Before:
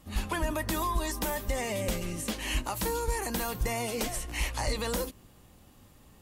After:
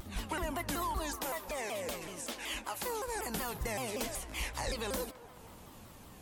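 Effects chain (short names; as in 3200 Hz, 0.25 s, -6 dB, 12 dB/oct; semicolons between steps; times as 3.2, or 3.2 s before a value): 1.16–3.16 tone controls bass -11 dB, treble -1 dB; upward compressor, threshold -36 dBFS; low shelf 120 Hz -5 dB; narrowing echo 0.217 s, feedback 78%, band-pass 1000 Hz, level -14 dB; shaped vibrato saw down 5.3 Hz, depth 250 cents; gain -4.5 dB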